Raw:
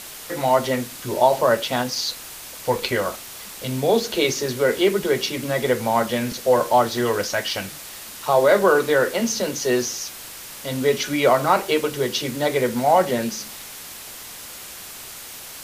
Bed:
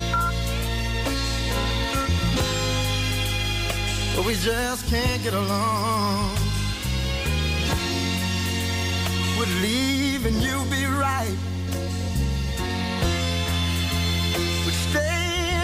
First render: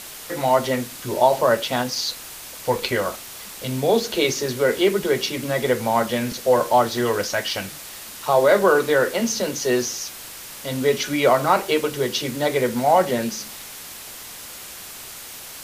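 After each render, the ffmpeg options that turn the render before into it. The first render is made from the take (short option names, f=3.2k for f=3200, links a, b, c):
-af anull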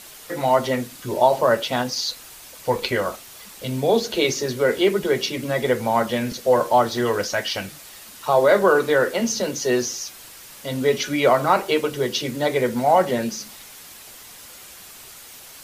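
-af "afftdn=nr=6:nf=-38"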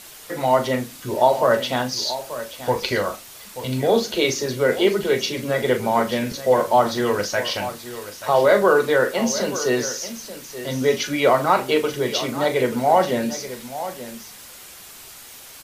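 -filter_complex "[0:a]asplit=2[a][b];[b]adelay=39,volume=-10.5dB[c];[a][c]amix=inputs=2:normalize=0,aecho=1:1:883:0.224"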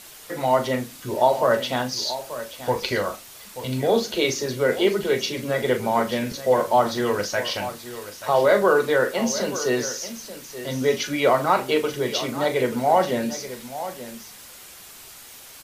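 -af "volume=-2dB"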